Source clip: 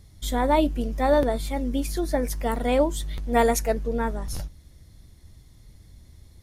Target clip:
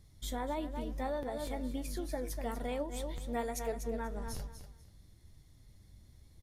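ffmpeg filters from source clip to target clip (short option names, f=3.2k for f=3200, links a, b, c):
-af "aecho=1:1:243|486|729:0.299|0.0657|0.0144,acompressor=threshold=-24dB:ratio=6,flanger=delay=6.1:depth=4.5:regen=74:speed=1.1:shape=triangular,volume=-4.5dB"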